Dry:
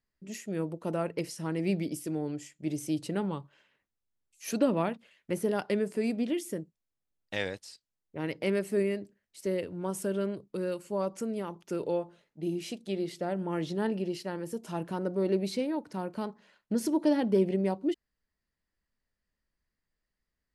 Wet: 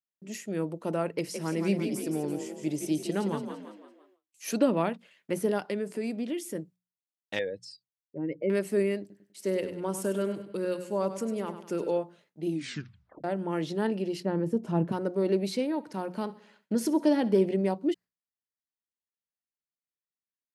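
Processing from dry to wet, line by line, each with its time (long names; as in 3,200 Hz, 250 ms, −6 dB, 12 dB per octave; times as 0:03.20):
0:01.14–0:04.48: echo with shifted repeats 169 ms, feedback 44%, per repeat +35 Hz, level −7 dB
0:05.58–0:06.55: downward compressor 1.5 to 1, threshold −37 dBFS
0:07.39–0:08.50: expanding power law on the bin magnitudes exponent 2.1
0:09.00–0:11.98: repeating echo 99 ms, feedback 42%, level −10.5 dB
0:12.50: tape stop 0.74 s
0:14.20–0:14.92: spectral tilt −4 dB per octave
0:15.64–0:17.46: repeating echo 65 ms, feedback 60%, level −20 dB
whole clip: noise gate with hold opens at −56 dBFS; high-pass filter 130 Hz; mains-hum notches 60/120/180 Hz; level +2 dB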